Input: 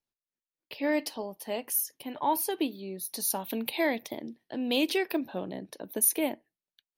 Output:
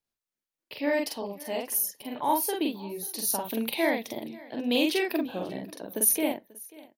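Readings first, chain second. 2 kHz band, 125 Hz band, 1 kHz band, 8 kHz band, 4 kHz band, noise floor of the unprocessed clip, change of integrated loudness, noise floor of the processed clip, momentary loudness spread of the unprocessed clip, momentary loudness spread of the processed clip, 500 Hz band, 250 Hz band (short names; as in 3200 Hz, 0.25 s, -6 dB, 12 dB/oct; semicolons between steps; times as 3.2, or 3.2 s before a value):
+2.0 dB, +1.5 dB, +2.0 dB, +2.0 dB, +2.0 dB, under -85 dBFS, +2.0 dB, under -85 dBFS, 14 LU, 13 LU, +2.0 dB, +2.0 dB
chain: doubler 45 ms -2 dB; on a send: echo 0.539 s -21.5 dB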